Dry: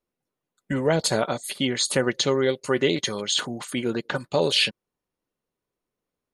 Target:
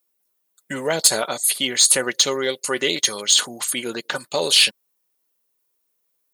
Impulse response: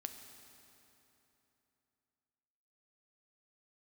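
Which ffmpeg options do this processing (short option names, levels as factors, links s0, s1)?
-af "aemphasis=mode=production:type=riaa,acontrast=32,volume=0.668"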